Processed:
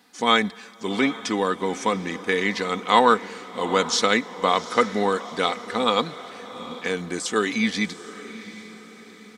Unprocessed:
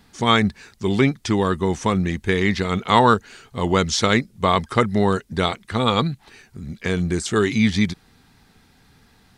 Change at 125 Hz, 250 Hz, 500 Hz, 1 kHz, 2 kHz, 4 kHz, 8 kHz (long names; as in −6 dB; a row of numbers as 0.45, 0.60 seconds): −14.5, −5.5, −1.5, −1.0, −0.5, −0.5, −0.5 decibels